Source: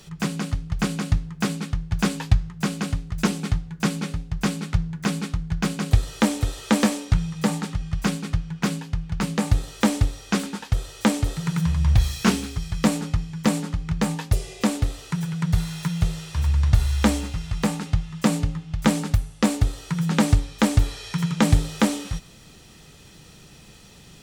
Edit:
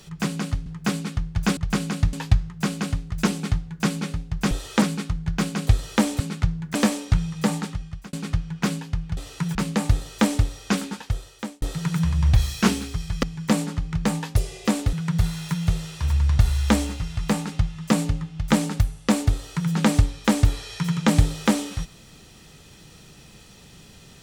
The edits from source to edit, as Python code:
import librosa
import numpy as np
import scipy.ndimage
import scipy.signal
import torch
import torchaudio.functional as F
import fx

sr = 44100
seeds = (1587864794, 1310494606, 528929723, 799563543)

y = fx.edit(x, sr, fx.move(start_s=0.66, length_s=0.56, to_s=2.13),
    fx.swap(start_s=4.51, length_s=0.55, other_s=6.44, other_length_s=0.31),
    fx.fade_out_span(start_s=7.61, length_s=0.52),
    fx.fade_out_span(start_s=10.5, length_s=0.74),
    fx.cut(start_s=12.85, length_s=0.34),
    fx.move(start_s=14.89, length_s=0.38, to_s=9.17), tone=tone)